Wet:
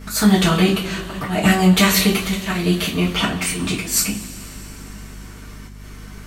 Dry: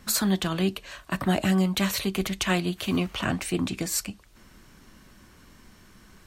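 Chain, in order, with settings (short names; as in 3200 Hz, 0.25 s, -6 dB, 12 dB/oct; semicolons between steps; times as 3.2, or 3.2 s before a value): auto swell 0.191 s; two-slope reverb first 0.28 s, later 3.7 s, from -22 dB, DRR -8 dB; hum 50 Hz, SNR 18 dB; gain +4.5 dB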